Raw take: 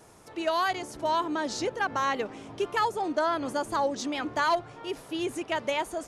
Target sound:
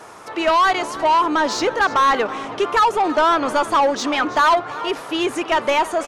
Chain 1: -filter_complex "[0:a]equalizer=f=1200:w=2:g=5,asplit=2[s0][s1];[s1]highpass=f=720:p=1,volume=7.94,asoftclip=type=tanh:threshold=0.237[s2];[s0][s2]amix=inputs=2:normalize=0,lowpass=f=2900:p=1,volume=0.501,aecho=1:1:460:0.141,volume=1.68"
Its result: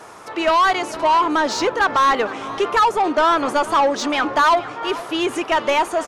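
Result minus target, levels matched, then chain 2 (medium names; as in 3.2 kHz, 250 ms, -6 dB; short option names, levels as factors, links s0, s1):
echo 135 ms late
-filter_complex "[0:a]equalizer=f=1200:w=2:g=5,asplit=2[s0][s1];[s1]highpass=f=720:p=1,volume=7.94,asoftclip=type=tanh:threshold=0.237[s2];[s0][s2]amix=inputs=2:normalize=0,lowpass=f=2900:p=1,volume=0.501,aecho=1:1:325:0.141,volume=1.68"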